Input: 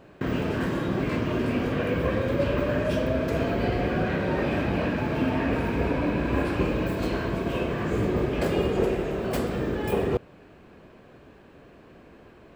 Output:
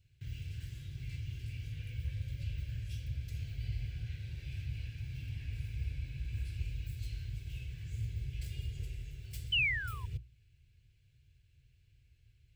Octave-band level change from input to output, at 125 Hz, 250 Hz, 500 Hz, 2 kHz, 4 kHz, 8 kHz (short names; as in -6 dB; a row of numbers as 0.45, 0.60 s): -8.5 dB, -30.0 dB, under -40 dB, -8.0 dB, -3.0 dB, -10.5 dB